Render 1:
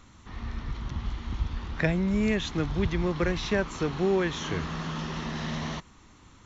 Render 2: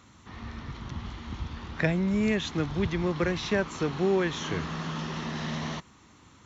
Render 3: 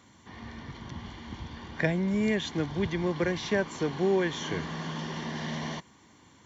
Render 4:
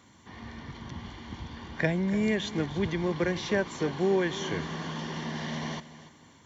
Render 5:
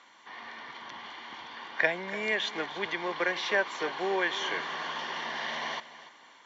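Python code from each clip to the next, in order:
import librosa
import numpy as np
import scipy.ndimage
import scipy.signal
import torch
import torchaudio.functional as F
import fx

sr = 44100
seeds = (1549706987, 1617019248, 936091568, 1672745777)

y1 = scipy.signal.sosfilt(scipy.signal.butter(2, 83.0, 'highpass', fs=sr, output='sos'), x)
y2 = fx.notch_comb(y1, sr, f0_hz=1300.0)
y3 = fx.echo_feedback(y2, sr, ms=290, feedback_pct=31, wet_db=-15.5)
y4 = fx.bandpass_edges(y3, sr, low_hz=750.0, high_hz=3900.0)
y4 = y4 * librosa.db_to_amplitude(6.0)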